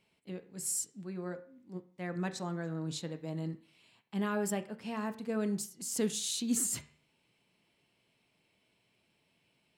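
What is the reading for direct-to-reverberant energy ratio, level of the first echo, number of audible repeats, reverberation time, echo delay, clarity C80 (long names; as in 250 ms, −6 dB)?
9.0 dB, no echo audible, no echo audible, 0.45 s, no echo audible, 18.5 dB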